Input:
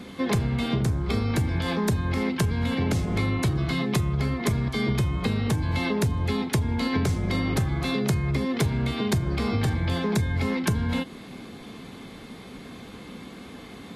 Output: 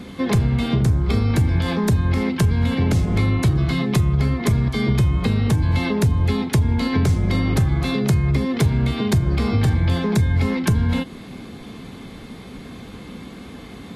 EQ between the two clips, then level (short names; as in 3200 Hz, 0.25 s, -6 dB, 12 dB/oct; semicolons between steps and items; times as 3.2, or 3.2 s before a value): low shelf 160 Hz +7.5 dB; +2.5 dB